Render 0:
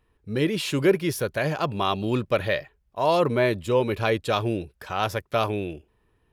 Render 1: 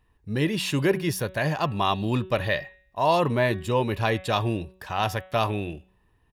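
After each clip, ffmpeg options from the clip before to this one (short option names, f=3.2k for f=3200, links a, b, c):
-af "aecho=1:1:1.1:0.37,bandreject=f=187:t=h:w=4,bandreject=f=374:t=h:w=4,bandreject=f=561:t=h:w=4,bandreject=f=748:t=h:w=4,bandreject=f=935:t=h:w=4,bandreject=f=1.122k:t=h:w=4,bandreject=f=1.309k:t=h:w=4,bandreject=f=1.496k:t=h:w=4,bandreject=f=1.683k:t=h:w=4,bandreject=f=1.87k:t=h:w=4,bandreject=f=2.057k:t=h:w=4,bandreject=f=2.244k:t=h:w=4,bandreject=f=2.431k:t=h:w=4,bandreject=f=2.618k:t=h:w=4,bandreject=f=2.805k:t=h:w=4,bandreject=f=2.992k:t=h:w=4,bandreject=f=3.179k:t=h:w=4,bandreject=f=3.366k:t=h:w=4,bandreject=f=3.553k:t=h:w=4,bandreject=f=3.74k:t=h:w=4,bandreject=f=3.927k:t=h:w=4"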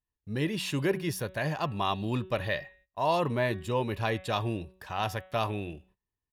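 -af "agate=range=-21dB:threshold=-54dB:ratio=16:detection=peak,volume=-5.5dB"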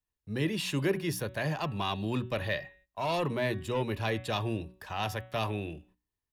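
-filter_complex "[0:a]acrossover=split=190|430|1800[a][b][c][d];[c]asoftclip=type=tanh:threshold=-30.5dB[e];[a][b][e][d]amix=inputs=4:normalize=0,bandreject=f=60:t=h:w=6,bandreject=f=120:t=h:w=6,bandreject=f=180:t=h:w=6,bandreject=f=240:t=h:w=6,bandreject=f=300:t=h:w=6"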